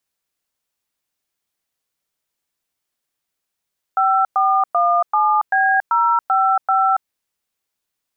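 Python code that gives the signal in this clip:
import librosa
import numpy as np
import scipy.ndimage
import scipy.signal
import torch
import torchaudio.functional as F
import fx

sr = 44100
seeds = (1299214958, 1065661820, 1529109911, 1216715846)

y = fx.dtmf(sr, digits='5417B055', tone_ms=280, gap_ms=108, level_db=-15.5)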